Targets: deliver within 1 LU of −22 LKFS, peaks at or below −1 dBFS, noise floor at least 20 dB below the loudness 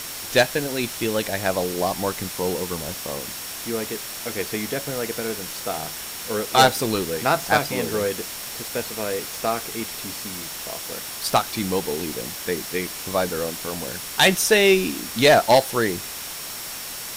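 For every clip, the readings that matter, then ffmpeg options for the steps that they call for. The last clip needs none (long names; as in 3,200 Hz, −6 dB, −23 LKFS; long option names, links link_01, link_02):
interfering tone 5,500 Hz; level of the tone −42 dBFS; background noise floor −34 dBFS; target noise floor −43 dBFS; integrated loudness −23.0 LKFS; sample peak −3.0 dBFS; target loudness −22.0 LKFS
→ -af "bandreject=frequency=5500:width=30"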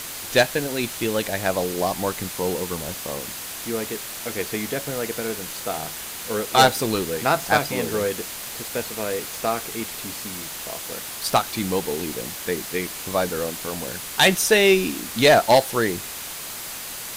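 interfering tone none found; background noise floor −34 dBFS; target noise floor −43 dBFS
→ -af "afftdn=noise_reduction=9:noise_floor=-34"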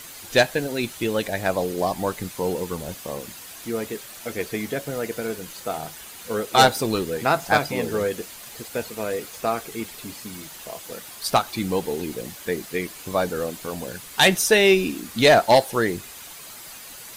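background noise floor −41 dBFS; target noise floor −44 dBFS
→ -af "afftdn=noise_reduction=6:noise_floor=-41"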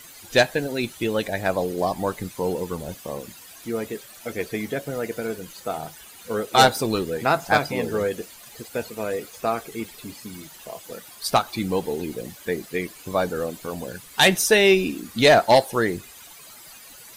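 background noise floor −45 dBFS; integrated loudness −23.0 LKFS; sample peak −3.5 dBFS; target loudness −22.0 LKFS
→ -af "volume=1dB"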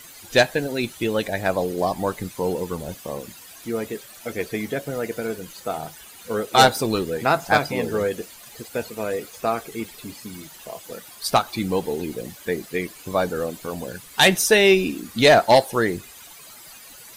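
integrated loudness −22.0 LKFS; sample peak −2.5 dBFS; background noise floor −44 dBFS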